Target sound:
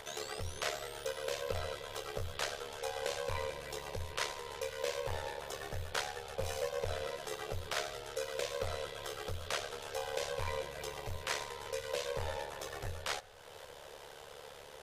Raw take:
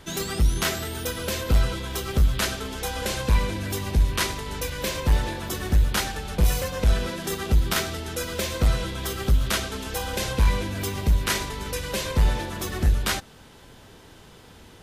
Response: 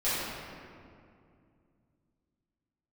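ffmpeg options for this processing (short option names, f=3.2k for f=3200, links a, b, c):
-filter_complex "[0:a]acrossover=split=9100[a][b];[b]acompressor=threshold=-48dB:ratio=4:attack=1:release=60[c];[a][c]amix=inputs=2:normalize=0,aeval=exprs='val(0)*sin(2*PI*36*n/s)':c=same,acompressor=mode=upward:threshold=-31dB:ratio=2.5,lowshelf=f=370:t=q:w=3:g=-10.5,asplit=2[d][e];[1:a]atrim=start_sample=2205,asetrate=29547,aresample=44100[f];[e][f]afir=irnorm=-1:irlink=0,volume=-34dB[g];[d][g]amix=inputs=2:normalize=0,volume=-8.5dB"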